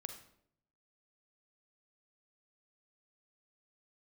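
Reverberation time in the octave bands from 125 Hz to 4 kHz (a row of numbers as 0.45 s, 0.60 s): 0.95 s, 0.85 s, 0.75 s, 0.60 s, 0.55 s, 0.50 s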